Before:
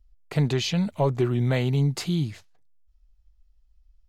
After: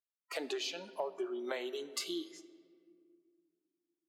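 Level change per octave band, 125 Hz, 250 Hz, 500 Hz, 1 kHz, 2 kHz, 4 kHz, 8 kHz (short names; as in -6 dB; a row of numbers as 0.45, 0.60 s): under -40 dB, -17.0 dB, -10.5 dB, -11.0 dB, -9.0 dB, -8.0 dB, -6.5 dB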